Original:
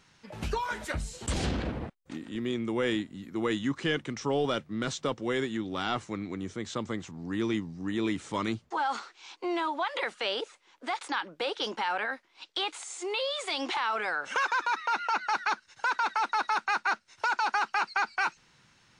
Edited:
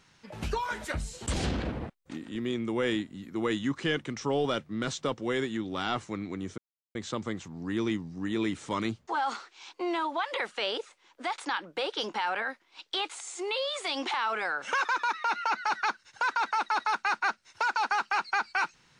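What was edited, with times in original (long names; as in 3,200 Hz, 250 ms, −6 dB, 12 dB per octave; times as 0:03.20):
0:06.58: splice in silence 0.37 s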